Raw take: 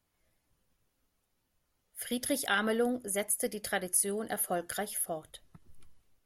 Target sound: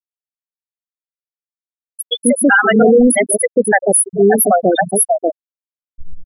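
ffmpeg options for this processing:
-filter_complex "[0:a]acrossover=split=170|600[s0][s1][s2];[s1]adelay=140[s3];[s0]adelay=300[s4];[s4][s3][s2]amix=inputs=3:normalize=0,apsyclip=39.8,afftfilt=real='re*gte(hypot(re,im),1.78)':imag='im*gte(hypot(re,im),1.78)':win_size=1024:overlap=0.75,volume=0.668"

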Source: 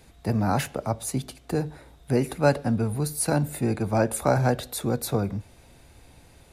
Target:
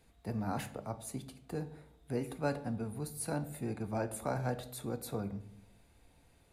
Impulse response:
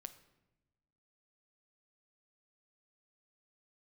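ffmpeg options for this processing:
-filter_complex "[0:a]equalizer=f=5600:w=2.8:g=-3.5[s0];[1:a]atrim=start_sample=2205,asetrate=70560,aresample=44100[s1];[s0][s1]afir=irnorm=-1:irlink=0,volume=0.708"

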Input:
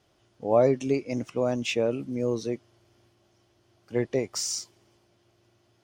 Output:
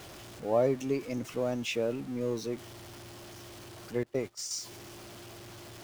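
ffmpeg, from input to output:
-filter_complex "[0:a]aeval=exprs='val(0)+0.5*0.0158*sgn(val(0))':c=same,asettb=1/sr,asplit=3[s0][s1][s2];[s0]atrim=end=4.034[s3];[s1]atrim=start=4.03:end=4.51,asetpts=PTS-STARTPTS,afade=t=in:d=0.004:c=qsin,afade=t=out:st=0.476:d=0.004:c=qsin,agate=range=0.0891:threshold=0.0398:ratio=16:detection=peak[s4];[s2]atrim=start=4.506[s5];[s3][s4]acrossfade=d=0.004:c1=hsin:c2=qsin[s6];[s6][s5]acrossfade=d=0.004:c1=qsin:c2=hsin,volume=0.501"

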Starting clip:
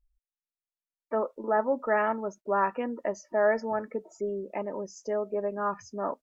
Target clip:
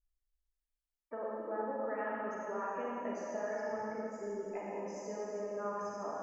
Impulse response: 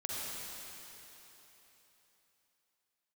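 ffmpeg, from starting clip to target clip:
-filter_complex "[0:a]acompressor=threshold=0.0398:ratio=6[s0];[1:a]atrim=start_sample=2205,asetrate=57330,aresample=44100[s1];[s0][s1]afir=irnorm=-1:irlink=0,volume=0.531"

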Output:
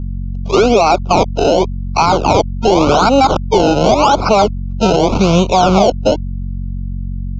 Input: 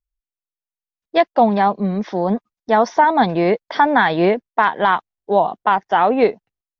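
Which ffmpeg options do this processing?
-filter_complex "[0:a]areverse,lowshelf=f=490:g=-10,acrossover=split=280|2700[s0][s1][s2];[s2]dynaudnorm=f=200:g=13:m=2.37[s3];[s0][s1][s3]amix=inputs=3:normalize=0,acrusher=samples=24:mix=1:aa=0.000001:lfo=1:lforange=24:lforate=0.95,acrossover=split=390|2200[s4][s5][s6];[s4]acompressor=threshold=0.0224:ratio=4[s7];[s5]acompressor=threshold=0.0562:ratio=4[s8];[s6]acompressor=threshold=0.0141:ratio=4[s9];[s7][s8][s9]amix=inputs=3:normalize=0,aeval=exprs='val(0)+0.00891*(sin(2*PI*50*n/s)+sin(2*PI*2*50*n/s)/2+sin(2*PI*3*50*n/s)/3+sin(2*PI*4*50*n/s)/4+sin(2*PI*5*50*n/s)/5)':c=same,aresample=16000,asoftclip=type=tanh:threshold=0.168,aresample=44100,asetrate=40517,aresample=44100,asuperstop=centerf=1800:order=8:qfactor=2.2,alimiter=level_in=13.3:limit=0.891:release=50:level=0:latency=1,volume=0.891"

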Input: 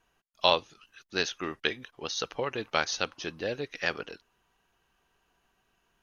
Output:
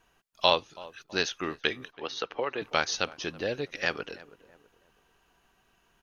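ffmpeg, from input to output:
-filter_complex "[0:a]asettb=1/sr,asplit=3[s0][s1][s2];[s0]atrim=end=1.924[s3];[s1]atrim=start=1.92:end=2.62,asetpts=PTS-STARTPTS,afade=t=in:d=0.004:c=qsin,afade=t=out:st=0.696:d=0.004:c=qsin,acrossover=split=250 3700:gain=0.224 1 0.158[s4][s5][s6];[s4][s5][s6]amix=inputs=3:normalize=0[s7];[s2]atrim=start=2.616[s8];[s3][s7]acrossfade=d=0.004:c1=hsin:c2=qsin[s9];[s9][s8]acrossfade=d=0.004:c1=qsin:c2=hsin,asplit=2[s10][s11];[s11]adelay=327,lowpass=f=1200:p=1,volume=0.1,asplit=2[s12][s13];[s13]adelay=327,lowpass=f=1200:p=1,volume=0.38,asplit=2[s14][s15];[s15]adelay=327,lowpass=f=1200:p=1,volume=0.38[s16];[s10][s12][s14][s16]amix=inputs=4:normalize=0,asplit=2[s17][s18];[s18]acompressor=threshold=0.00708:ratio=6,volume=0.75[s19];[s17][s19]amix=inputs=2:normalize=0"

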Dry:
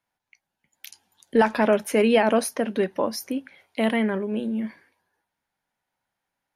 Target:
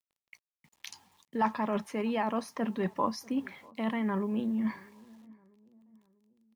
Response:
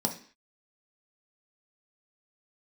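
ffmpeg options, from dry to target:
-filter_complex "[0:a]highpass=110,bass=f=250:g=12,treble=f=4000:g=14,areverse,acompressor=threshold=0.0398:ratio=16,areverse,firequalizer=gain_entry='entry(610,0);entry(1000,13);entry(2300,0);entry(11000,-24)':delay=0.05:min_phase=1,acrusher=bits=10:mix=0:aa=0.000001,bandreject=f=1500:w=5.1,asplit=2[s0][s1];[s1]adelay=644,lowpass=f=1100:p=1,volume=0.0631,asplit=2[s2][s3];[s3]adelay=644,lowpass=f=1100:p=1,volume=0.47,asplit=2[s4][s5];[s5]adelay=644,lowpass=f=1100:p=1,volume=0.47[s6];[s2][s4][s6]amix=inputs=3:normalize=0[s7];[s0][s7]amix=inputs=2:normalize=0"

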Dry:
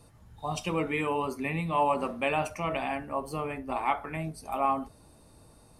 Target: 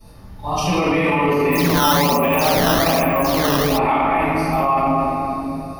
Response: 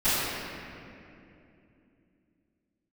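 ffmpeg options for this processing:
-filter_complex "[1:a]atrim=start_sample=2205[s0];[0:a][s0]afir=irnorm=-1:irlink=0,asplit=3[s1][s2][s3];[s1]afade=t=out:st=1.51:d=0.02[s4];[s2]acrusher=samples=11:mix=1:aa=0.000001:lfo=1:lforange=17.6:lforate=1.2,afade=t=in:st=1.51:d=0.02,afade=t=out:st=3.77:d=0.02[s5];[s3]afade=t=in:st=3.77:d=0.02[s6];[s4][s5][s6]amix=inputs=3:normalize=0,alimiter=limit=0.335:level=0:latency=1:release=15,aexciter=amount=1.2:drive=1.9:freq=4400"

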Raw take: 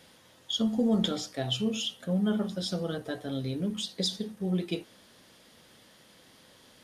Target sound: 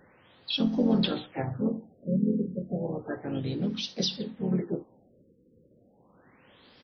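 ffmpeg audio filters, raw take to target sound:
-filter_complex "[0:a]aresample=22050,aresample=44100,asplit=4[s0][s1][s2][s3];[s1]asetrate=35002,aresample=44100,atempo=1.25992,volume=0.316[s4];[s2]asetrate=52444,aresample=44100,atempo=0.840896,volume=0.501[s5];[s3]asetrate=58866,aresample=44100,atempo=0.749154,volume=0.178[s6];[s0][s4][s5][s6]amix=inputs=4:normalize=0,bandreject=f=640:w=12,afftfilt=real='re*lt(b*sr/1024,520*pow(6400/520,0.5+0.5*sin(2*PI*0.32*pts/sr)))':imag='im*lt(b*sr/1024,520*pow(6400/520,0.5+0.5*sin(2*PI*0.32*pts/sr)))':win_size=1024:overlap=0.75"

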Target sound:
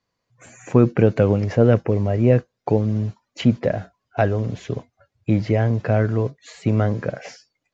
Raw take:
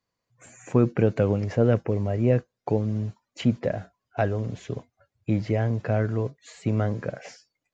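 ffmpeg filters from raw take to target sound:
-af "lowpass=f=7000:w=0.5412,lowpass=f=7000:w=1.3066,volume=1.88"

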